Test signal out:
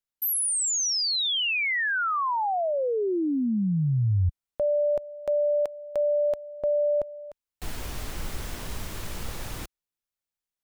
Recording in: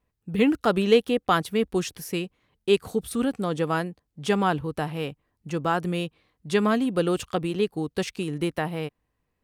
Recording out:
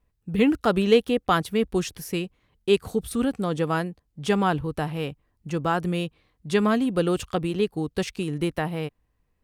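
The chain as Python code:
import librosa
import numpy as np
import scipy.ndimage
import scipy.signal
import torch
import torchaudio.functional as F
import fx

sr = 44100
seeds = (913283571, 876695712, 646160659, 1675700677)

y = fx.low_shelf(x, sr, hz=74.0, db=11.5)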